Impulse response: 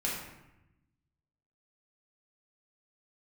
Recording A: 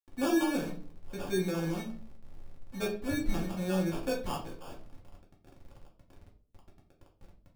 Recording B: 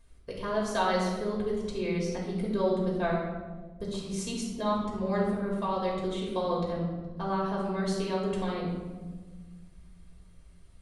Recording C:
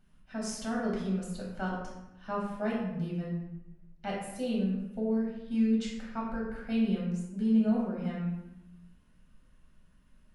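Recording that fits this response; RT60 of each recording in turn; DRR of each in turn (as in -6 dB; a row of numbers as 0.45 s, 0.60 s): C; 0.50 s, 1.4 s, 0.90 s; -3.0 dB, -4.5 dB, -5.0 dB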